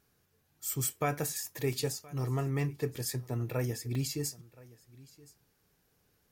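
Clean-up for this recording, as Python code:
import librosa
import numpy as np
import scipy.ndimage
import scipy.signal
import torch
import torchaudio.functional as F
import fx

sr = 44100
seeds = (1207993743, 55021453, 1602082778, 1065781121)

y = fx.fix_interpolate(x, sr, at_s=(1.73, 3.95), length_ms=2.9)
y = fx.fix_echo_inverse(y, sr, delay_ms=1022, level_db=-22.0)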